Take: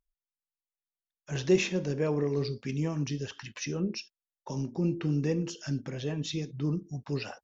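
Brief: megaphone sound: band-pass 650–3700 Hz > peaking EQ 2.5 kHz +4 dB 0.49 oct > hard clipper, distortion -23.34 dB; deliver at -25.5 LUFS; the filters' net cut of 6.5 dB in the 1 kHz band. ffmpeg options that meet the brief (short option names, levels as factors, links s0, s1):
-af "highpass=650,lowpass=3700,equalizer=f=1000:t=o:g=-7,equalizer=f=2500:t=o:w=0.49:g=4,asoftclip=type=hard:threshold=0.0631,volume=5.96"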